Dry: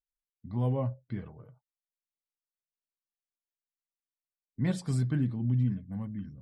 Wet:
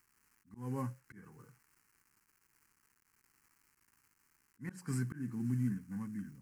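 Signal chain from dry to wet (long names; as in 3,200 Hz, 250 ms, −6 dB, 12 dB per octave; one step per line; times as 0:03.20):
variable-slope delta modulation 64 kbit/s
high-pass filter 210 Hz 12 dB per octave
parametric band 1,600 Hz +5 dB 0.28 octaves
surface crackle 440 per second −55 dBFS
volume swells 240 ms
phaser with its sweep stopped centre 1,500 Hz, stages 4
level +1.5 dB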